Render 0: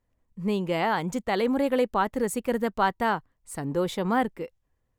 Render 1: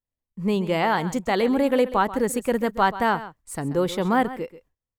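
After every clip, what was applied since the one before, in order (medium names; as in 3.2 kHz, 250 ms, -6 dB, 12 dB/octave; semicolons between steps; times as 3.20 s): delay 133 ms -15 dB; gate with hold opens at -50 dBFS; trim +3.5 dB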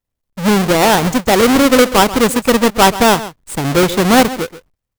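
square wave that keeps the level; trim +6.5 dB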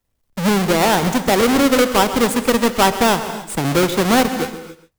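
gated-style reverb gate 310 ms flat, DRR 11.5 dB; three bands compressed up and down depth 40%; trim -4.5 dB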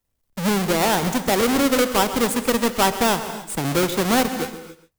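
treble shelf 6.5 kHz +4.5 dB; trim -4.5 dB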